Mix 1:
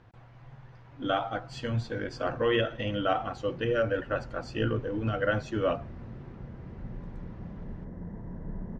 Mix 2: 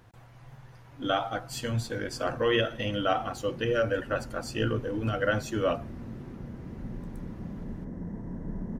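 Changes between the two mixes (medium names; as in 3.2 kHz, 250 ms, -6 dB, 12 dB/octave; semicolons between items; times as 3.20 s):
background: add peaking EQ 260 Hz +7 dB 0.92 oct; master: remove distance through air 160 m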